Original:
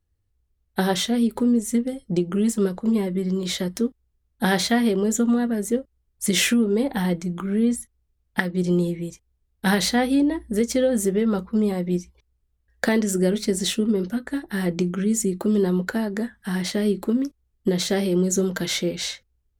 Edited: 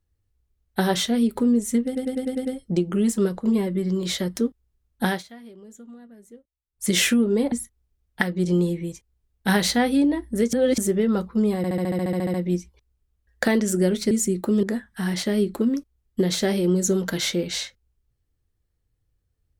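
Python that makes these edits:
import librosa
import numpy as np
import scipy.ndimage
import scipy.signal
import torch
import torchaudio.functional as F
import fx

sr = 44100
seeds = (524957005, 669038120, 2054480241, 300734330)

y = fx.edit(x, sr, fx.stutter(start_s=1.85, slice_s=0.1, count=7),
    fx.fade_down_up(start_s=4.43, length_s=1.87, db=-23.5, fade_s=0.2),
    fx.cut(start_s=6.92, length_s=0.78),
    fx.reverse_span(start_s=10.71, length_s=0.25),
    fx.stutter(start_s=11.75, slice_s=0.07, count=12),
    fx.cut(start_s=13.52, length_s=1.56),
    fx.cut(start_s=15.6, length_s=0.51), tone=tone)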